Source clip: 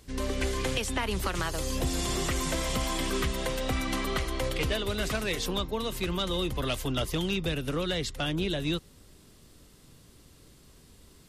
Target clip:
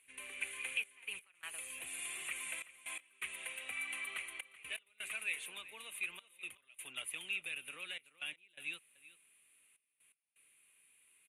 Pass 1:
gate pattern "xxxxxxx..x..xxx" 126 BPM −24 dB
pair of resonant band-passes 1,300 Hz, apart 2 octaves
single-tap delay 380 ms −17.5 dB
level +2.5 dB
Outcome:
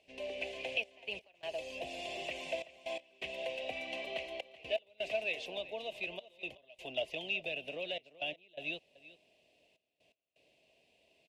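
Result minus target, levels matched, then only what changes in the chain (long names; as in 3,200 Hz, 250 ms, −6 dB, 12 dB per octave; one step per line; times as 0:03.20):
1,000 Hz band +7.0 dB
change: pair of resonant band-passes 4,900 Hz, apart 2 octaves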